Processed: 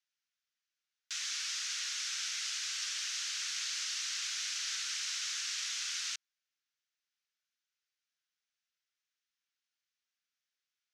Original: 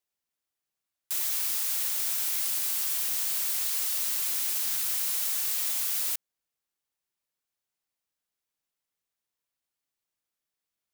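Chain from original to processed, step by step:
Chebyshev band-pass filter 1,400–6,200 Hz, order 3
level +2 dB

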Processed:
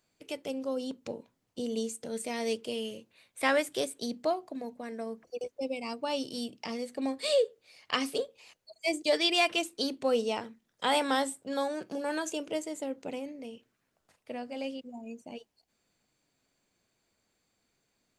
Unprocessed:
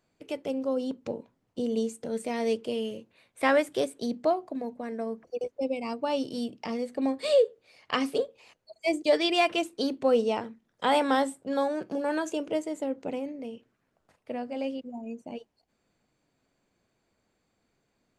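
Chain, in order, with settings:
high-shelf EQ 2,400 Hz +10.5 dB
level −5 dB

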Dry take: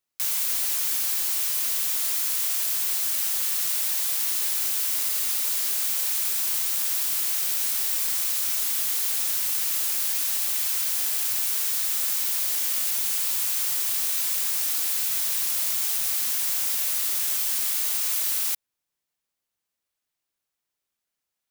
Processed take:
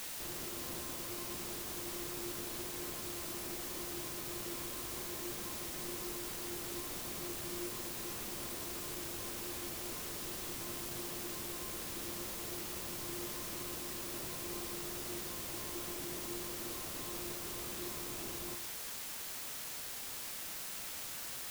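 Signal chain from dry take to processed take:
variable-slope delta modulation 64 kbit/s
Butterworth low-pass 1,300 Hz 72 dB per octave
parametric band 1,000 Hz −12.5 dB 1.3 octaves
tuned comb filter 350 Hz, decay 0.43 s, harmonics odd, mix 90%
in parallel at −7 dB: bit-depth reduction 8 bits, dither triangular
on the sum: level +11.5 dB

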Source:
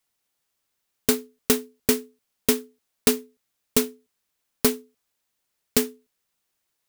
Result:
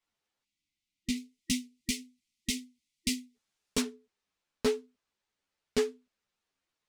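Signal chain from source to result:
brickwall limiter −8 dBFS, peak gain reduction 4 dB
0:01.16–0:03.81: high-shelf EQ 4,700 Hz +9.5 dB
0:00.44–0:03.35: gain on a spectral selection 330–1,900 Hz −28 dB
high-frequency loss of the air 88 metres
string-ensemble chorus

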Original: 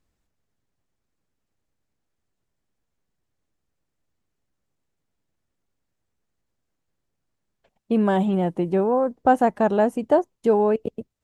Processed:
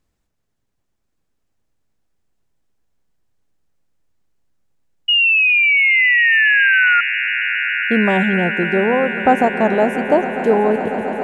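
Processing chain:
sound drawn into the spectrogram fall, 0:05.08–0:07.01, 1,400–2,900 Hz −17 dBFS
echo that builds up and dies away 137 ms, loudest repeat 8, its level −16.5 dB
level +3.5 dB

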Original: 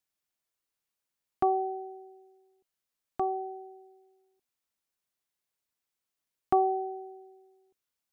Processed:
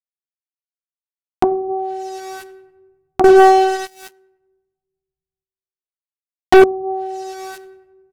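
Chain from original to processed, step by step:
bit reduction 10 bits
double-tracking delay 13 ms −2 dB
feedback echo with a low-pass in the loop 94 ms, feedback 43%, low-pass 1,900 Hz, level −18 dB
treble cut that deepens with the level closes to 350 Hz, closed at −22.5 dBFS
on a send at −14 dB: convolution reverb RT60 0.65 s, pre-delay 4 ms
0:03.24–0:06.64: on the sum: leveller curve on the samples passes 5
upward compression, threshold −28 dBFS
boost into a limiter +12 dB
highs frequency-modulated by the lows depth 0.22 ms

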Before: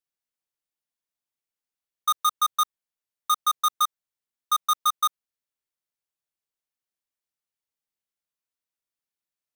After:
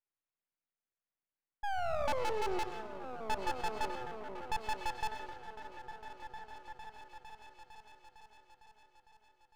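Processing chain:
single-sideband voice off tune −360 Hz 440–2,800 Hz
sound drawn into the spectrogram fall, 0:01.63–0:02.63, 340–840 Hz −31 dBFS
soft clipping −28 dBFS, distortion −7 dB
echo whose low-pass opens from repeat to repeat 455 ms, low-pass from 200 Hz, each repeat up 1 octave, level −3 dB
on a send at −9 dB: convolution reverb RT60 1.1 s, pre-delay 55 ms
on the sum: half-wave rectification
level +2 dB

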